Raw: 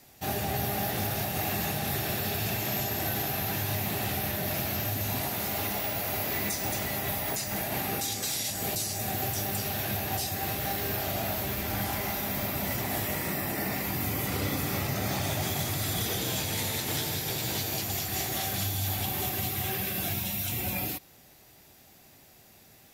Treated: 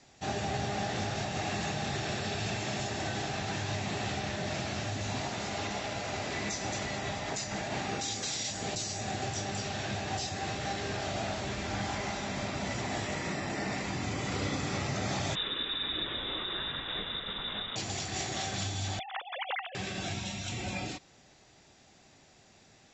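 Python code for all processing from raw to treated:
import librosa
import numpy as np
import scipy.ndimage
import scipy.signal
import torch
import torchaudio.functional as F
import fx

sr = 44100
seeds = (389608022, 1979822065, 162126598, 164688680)

y = fx.chain(x, sr, fx.peak_eq(hz=510.0, db=-12.5, octaves=1.3),
    fx.freq_invert(carrier_hz=3700), at=(15.35, 17.76))
y = fx.chain(y, sr, fx.sine_speech(),
    fx.over_compress(threshold_db=-36.0, ratio=-0.5), at=(18.99, 19.75))
y = scipy.signal.sosfilt(scipy.signal.cheby1(10, 1.0, 7700.0, 'lowpass', fs=sr, output='sos'), y)
y = fx.peak_eq(y, sr, hz=81.0, db=-2.5, octaves=0.77)
y = y * librosa.db_to_amplitude(-1.0)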